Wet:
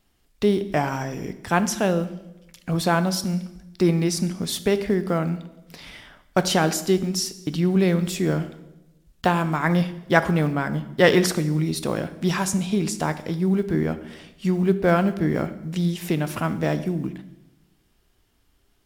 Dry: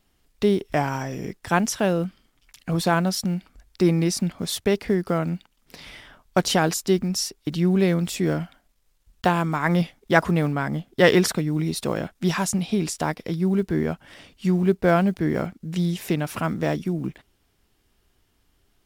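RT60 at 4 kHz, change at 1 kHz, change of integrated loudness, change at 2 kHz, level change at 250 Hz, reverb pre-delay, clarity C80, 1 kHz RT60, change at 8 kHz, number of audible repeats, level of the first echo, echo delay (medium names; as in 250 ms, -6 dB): 0.80 s, +0.5 dB, +0.5 dB, +0.5 dB, +0.5 dB, 8 ms, 16.0 dB, 0.90 s, +0.5 dB, no echo, no echo, no echo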